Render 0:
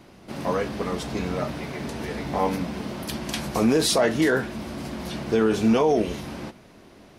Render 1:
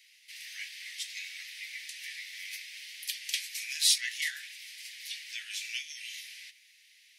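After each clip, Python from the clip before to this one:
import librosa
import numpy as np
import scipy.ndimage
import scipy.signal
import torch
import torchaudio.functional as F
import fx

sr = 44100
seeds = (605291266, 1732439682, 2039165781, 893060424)

y = scipy.signal.sosfilt(scipy.signal.butter(12, 1900.0, 'highpass', fs=sr, output='sos'), x)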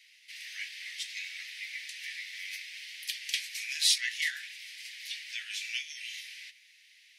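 y = fx.high_shelf(x, sr, hz=6500.0, db=-9.5)
y = F.gain(torch.from_numpy(y), 3.0).numpy()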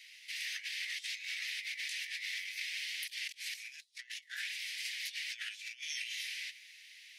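y = fx.over_compress(x, sr, threshold_db=-43.0, ratio=-0.5)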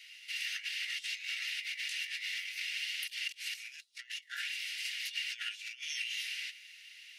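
y = fx.small_body(x, sr, hz=(1400.0, 2800.0), ring_ms=35, db=13)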